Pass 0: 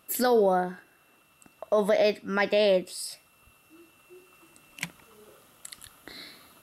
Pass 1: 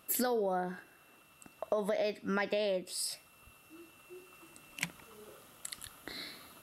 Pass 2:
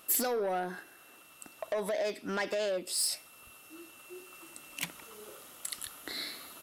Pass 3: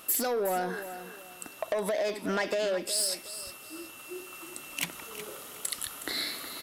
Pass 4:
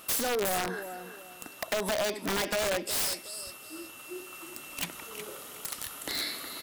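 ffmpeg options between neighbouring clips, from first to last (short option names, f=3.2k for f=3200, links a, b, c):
-af "acompressor=threshold=-29dB:ratio=10"
-af "asoftclip=type=tanh:threshold=-30.5dB,firequalizer=gain_entry='entry(140,0);entry(300,7);entry(6400,12)':delay=0.05:min_phase=1,volume=-3.5dB"
-af "acompressor=threshold=-34dB:ratio=3,aecho=1:1:366|732|1098:0.251|0.0728|0.0211,volume=6.5dB"
-af "aeval=exprs='(mod(15.8*val(0)+1,2)-1)/15.8':c=same"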